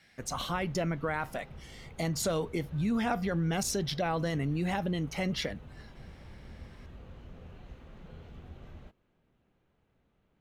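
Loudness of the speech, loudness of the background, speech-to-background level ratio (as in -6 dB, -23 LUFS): -32.5 LUFS, -51.0 LUFS, 18.5 dB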